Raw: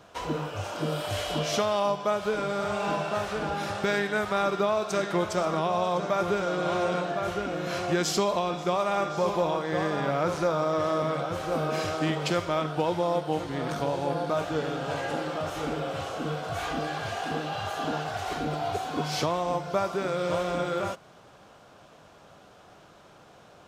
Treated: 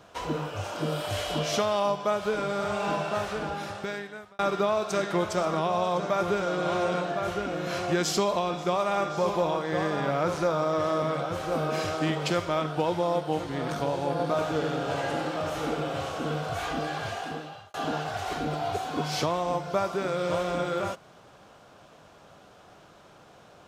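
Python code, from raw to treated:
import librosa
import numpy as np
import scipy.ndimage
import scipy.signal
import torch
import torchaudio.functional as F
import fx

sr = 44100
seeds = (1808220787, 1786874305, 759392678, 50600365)

y = fx.echo_single(x, sr, ms=93, db=-5.5, at=(14.1, 16.55))
y = fx.edit(y, sr, fx.fade_out_span(start_s=3.23, length_s=1.16),
    fx.fade_out_span(start_s=17.05, length_s=0.69), tone=tone)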